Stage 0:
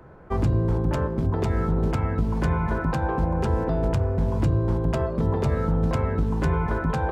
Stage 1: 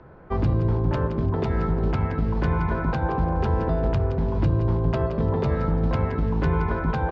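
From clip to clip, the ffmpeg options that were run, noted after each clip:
-af "lowpass=f=4.9k:w=0.5412,lowpass=f=4.9k:w=1.3066,aecho=1:1:171|342|513:0.316|0.0822|0.0214"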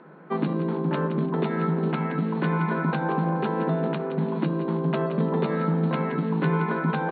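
-af "equalizer=f=630:t=o:w=1.2:g=-4.5,afftfilt=real='re*between(b*sr/4096,140,4400)':imag='im*between(b*sr/4096,140,4400)':win_size=4096:overlap=0.75,volume=3dB"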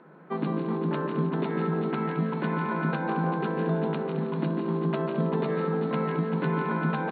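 -af "aecho=1:1:148|216|391:0.447|0.266|0.376,volume=-4dB"

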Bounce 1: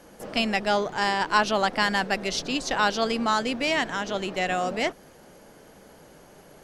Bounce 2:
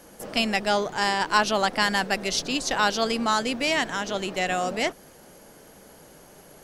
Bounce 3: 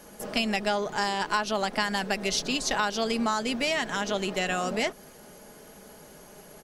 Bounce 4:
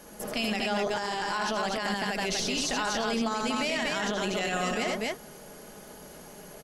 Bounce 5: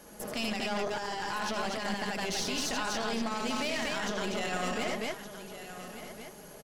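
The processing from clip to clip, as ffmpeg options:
-af "highshelf=f=6.9k:g=9.5"
-af "aecho=1:1:4.8:0.35,acompressor=threshold=-23dB:ratio=6"
-filter_complex "[0:a]asplit=2[a][b];[b]aecho=0:1:78.72|242:0.562|0.631[c];[a][c]amix=inputs=2:normalize=0,alimiter=limit=-20.5dB:level=0:latency=1:release=10"
-af "aeval=exprs='(tanh(17.8*val(0)+0.6)-tanh(0.6))/17.8':c=same,aecho=1:1:1167:0.251"

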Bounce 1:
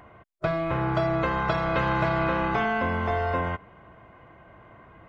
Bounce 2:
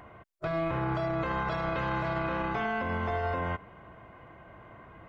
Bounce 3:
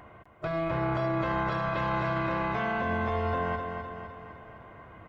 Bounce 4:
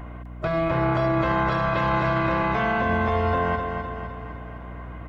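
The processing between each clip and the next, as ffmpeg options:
-af "alimiter=limit=-23dB:level=0:latency=1:release=51"
-af "aecho=1:1:255|510|765|1020|1275|1530|1785:0.501|0.271|0.146|0.0789|0.0426|0.023|0.0124"
-af "aeval=exprs='val(0)+0.00708*(sin(2*PI*60*n/s)+sin(2*PI*2*60*n/s)/2+sin(2*PI*3*60*n/s)/3+sin(2*PI*4*60*n/s)/4+sin(2*PI*5*60*n/s)/5)':c=same,volume=6.5dB"

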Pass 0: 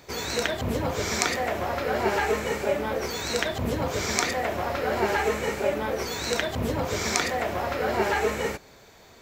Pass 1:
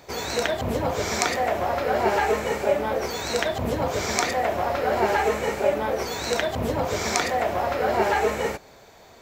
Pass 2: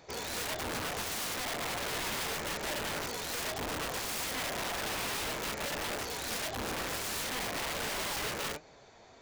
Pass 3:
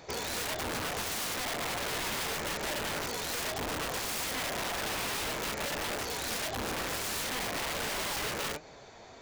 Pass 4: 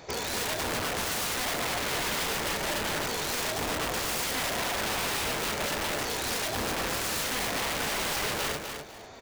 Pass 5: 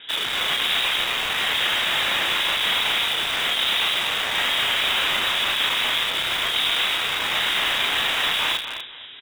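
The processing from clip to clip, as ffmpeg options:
-af "equalizer=f=710:w=1.3:g=5.5"
-af "aresample=16000,asoftclip=type=tanh:threshold=-21.5dB,aresample=44100,flanger=delay=5.9:depth=3:regen=70:speed=1.5:shape=triangular,aeval=exprs='(mod(28.2*val(0)+1,2)-1)/28.2':c=same,volume=-2.5dB"
-af "acompressor=threshold=-38dB:ratio=6,volume=5.5dB"
-af "aecho=1:1:249|498|747:0.473|0.118|0.0296,volume=3dB"
-filter_complex "[0:a]lowpass=f=3.3k:t=q:w=0.5098,lowpass=f=3.3k:t=q:w=0.6013,lowpass=f=3.3k:t=q:w=0.9,lowpass=f=3.3k:t=q:w=2.563,afreqshift=-3900,asplit=2[a][b];[b]adelay=34,volume=-5dB[c];[a][c]amix=inputs=2:normalize=0,asplit=2[d][e];[e]acrusher=bits=4:mix=0:aa=0.000001,volume=-8dB[f];[d][f]amix=inputs=2:normalize=0,volume=5.5dB"

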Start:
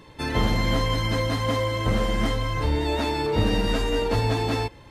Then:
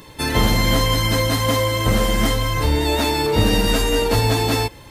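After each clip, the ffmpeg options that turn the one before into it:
-af "aemphasis=mode=production:type=50fm,volume=5.5dB"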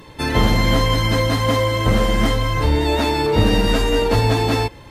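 -af "lowpass=f=3.3k:p=1,volume=1.5dB"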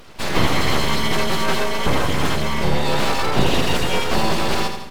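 -af "aecho=1:1:83|166|249|332|415|498:0.422|0.223|0.118|0.0628|0.0333|0.0176,aeval=exprs='abs(val(0))':c=same"

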